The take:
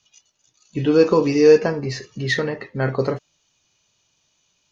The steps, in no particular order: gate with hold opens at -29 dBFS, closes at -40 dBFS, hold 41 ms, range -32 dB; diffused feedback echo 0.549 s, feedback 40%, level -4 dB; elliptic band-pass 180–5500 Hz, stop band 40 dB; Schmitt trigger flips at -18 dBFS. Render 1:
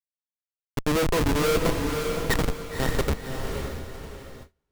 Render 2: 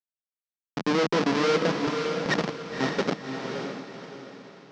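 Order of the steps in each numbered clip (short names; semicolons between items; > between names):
elliptic band-pass > Schmitt trigger > diffused feedback echo > gate with hold; Schmitt trigger > elliptic band-pass > gate with hold > diffused feedback echo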